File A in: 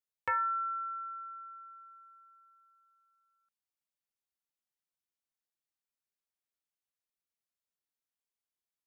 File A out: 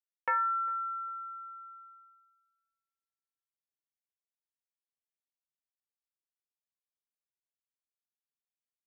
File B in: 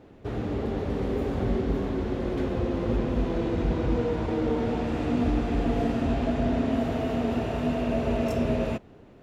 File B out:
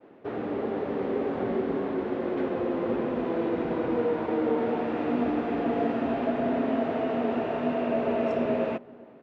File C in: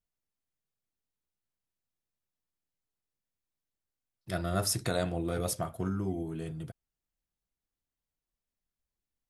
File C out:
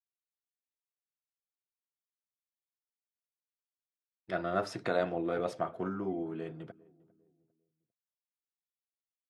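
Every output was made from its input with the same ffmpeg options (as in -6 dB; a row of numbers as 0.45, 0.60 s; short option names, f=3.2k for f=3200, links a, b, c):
-filter_complex "[0:a]highpass=280,lowpass=2.3k,agate=range=-33dB:threshold=-53dB:ratio=3:detection=peak,asplit=2[a][b];[b]adelay=400,lowpass=f=820:p=1,volume=-22.5dB,asplit=2[c][d];[d]adelay=400,lowpass=f=820:p=1,volume=0.39,asplit=2[e][f];[f]adelay=400,lowpass=f=820:p=1,volume=0.39[g];[a][c][e][g]amix=inputs=4:normalize=0,volume=2.5dB"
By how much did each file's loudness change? +2.0, -0.5, -1.5 LU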